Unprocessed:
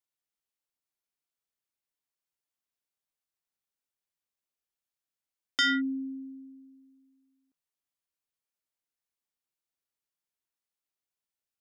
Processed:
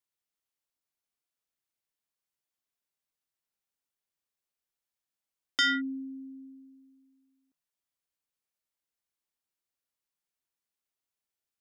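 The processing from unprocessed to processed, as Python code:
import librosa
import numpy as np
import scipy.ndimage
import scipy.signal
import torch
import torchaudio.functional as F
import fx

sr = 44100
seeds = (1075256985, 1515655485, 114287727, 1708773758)

y = fx.dynamic_eq(x, sr, hz=140.0, q=0.82, threshold_db=-48.0, ratio=4.0, max_db=-8)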